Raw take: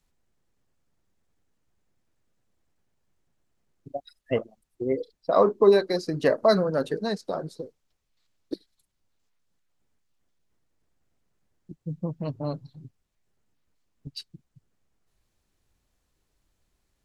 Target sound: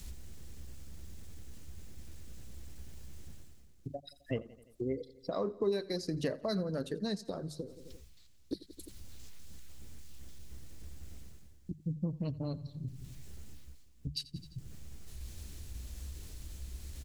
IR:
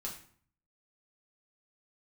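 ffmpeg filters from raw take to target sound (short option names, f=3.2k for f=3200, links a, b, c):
-af "aecho=1:1:86|172|258|344:0.075|0.039|0.0203|0.0105,areverse,acompressor=mode=upward:threshold=-41dB:ratio=2.5,areverse,equalizer=f=65:w=2.7:g=14.5,acompressor=threshold=-51dB:ratio=2,equalizer=f=950:w=0.47:g=-12,bandreject=f=50:t=h:w=6,bandreject=f=100:t=h:w=6,bandreject=f=150:t=h:w=6,volume=11.5dB"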